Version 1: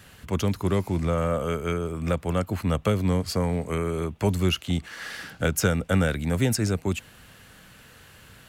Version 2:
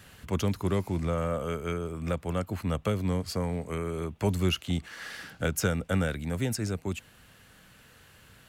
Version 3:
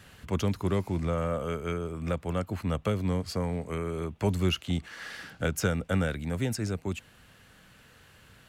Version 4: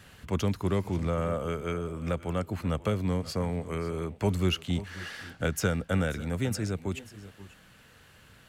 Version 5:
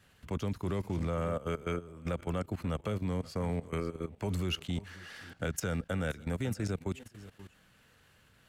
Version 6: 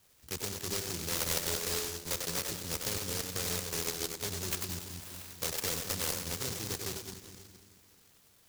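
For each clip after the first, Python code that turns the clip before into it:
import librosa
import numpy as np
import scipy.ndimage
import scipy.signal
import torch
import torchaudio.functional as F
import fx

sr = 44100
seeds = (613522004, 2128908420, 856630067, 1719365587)

y1 = fx.rider(x, sr, range_db=10, speed_s=2.0)
y1 = y1 * 10.0 ** (-5.5 / 20.0)
y2 = fx.high_shelf(y1, sr, hz=8800.0, db=-6.0)
y3 = fx.echo_multitap(y2, sr, ms=(529, 549), db=(-20.0, -19.0))
y4 = fx.level_steps(y3, sr, step_db=16)
y5 = fx.low_shelf_res(y4, sr, hz=330.0, db=-8.5, q=1.5)
y5 = fx.echo_split(y5, sr, split_hz=320.0, low_ms=213, high_ms=96, feedback_pct=52, wet_db=-4.0)
y5 = fx.noise_mod_delay(y5, sr, seeds[0], noise_hz=5500.0, depth_ms=0.45)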